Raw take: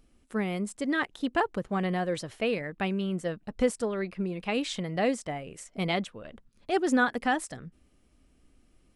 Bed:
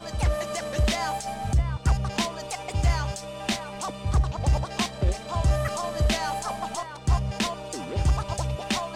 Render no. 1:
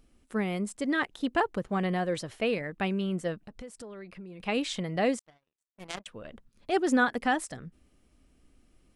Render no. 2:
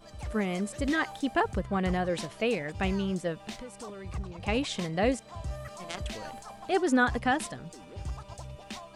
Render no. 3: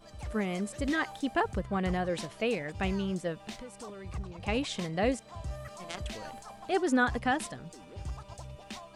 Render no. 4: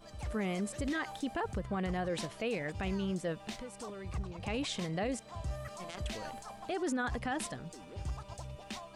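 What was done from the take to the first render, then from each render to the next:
0:03.36–0:04.40: downward compressor 4 to 1, threshold −43 dBFS; 0:05.19–0:06.06: power curve on the samples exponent 3
mix in bed −14.5 dB
level −2 dB
brickwall limiter −27 dBFS, peak gain reduction 11 dB

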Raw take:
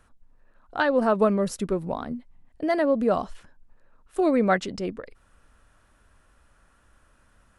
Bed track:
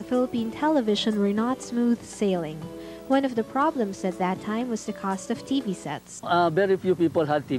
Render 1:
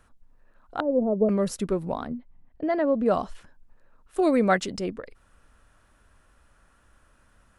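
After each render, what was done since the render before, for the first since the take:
0:00.80–0:01.29: inverse Chebyshev low-pass filter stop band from 2,000 Hz, stop band 60 dB
0:02.07–0:03.06: head-to-tape spacing loss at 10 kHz 23 dB
0:04.22–0:04.83: high-shelf EQ 5,800 Hz → 9,200 Hz +11.5 dB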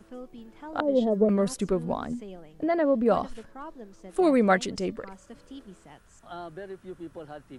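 mix in bed track −18.5 dB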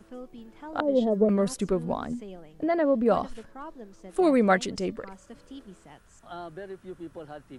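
no processing that can be heard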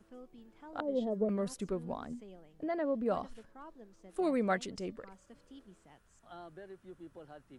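level −10 dB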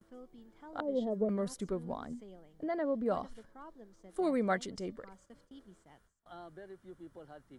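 notch filter 2,600 Hz, Q 6
noise gate with hold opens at −52 dBFS

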